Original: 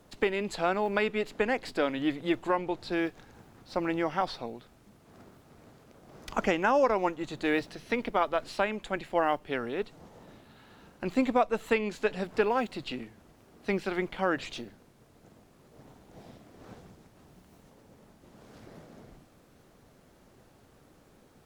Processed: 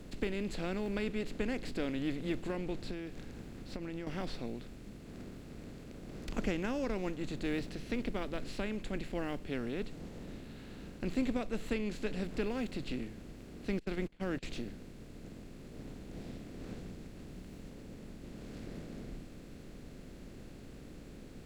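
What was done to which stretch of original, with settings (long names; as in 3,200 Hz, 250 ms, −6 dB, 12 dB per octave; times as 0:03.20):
0:02.89–0:04.07: downward compressor, threshold −36 dBFS
0:13.79–0:14.43: noise gate −35 dBFS, range −37 dB
whole clip: compressor on every frequency bin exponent 0.6; guitar amp tone stack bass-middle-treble 10-0-1; level +11.5 dB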